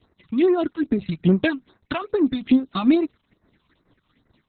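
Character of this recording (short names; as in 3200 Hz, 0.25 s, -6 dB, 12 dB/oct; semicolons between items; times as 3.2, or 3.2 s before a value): phasing stages 6, 2.4 Hz, lowest notch 450–3300 Hz; tremolo triangle 4.9 Hz, depth 70%; Opus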